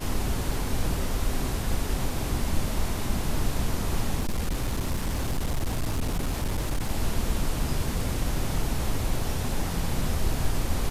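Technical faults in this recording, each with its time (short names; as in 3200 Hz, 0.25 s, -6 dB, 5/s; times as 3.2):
4.19–6.91 clipped -22.5 dBFS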